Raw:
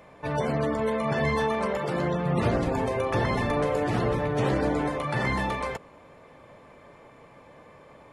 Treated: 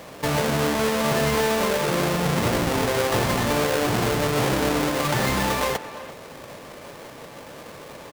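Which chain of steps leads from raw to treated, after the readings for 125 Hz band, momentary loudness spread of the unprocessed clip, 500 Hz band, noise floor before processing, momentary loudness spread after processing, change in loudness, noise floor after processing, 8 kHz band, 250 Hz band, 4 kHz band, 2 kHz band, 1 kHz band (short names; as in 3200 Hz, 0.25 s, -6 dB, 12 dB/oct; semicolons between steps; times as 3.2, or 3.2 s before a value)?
+2.5 dB, 3 LU, +3.5 dB, -52 dBFS, 19 LU, +4.5 dB, -42 dBFS, +18.0 dB, +3.5 dB, +12.5 dB, +5.5 dB, +4.0 dB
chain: half-waves squared off; low shelf 160 Hz -7 dB; compressor 3:1, threshold -29 dBFS, peak gain reduction 8.5 dB; speakerphone echo 0.34 s, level -12 dB; gain +7 dB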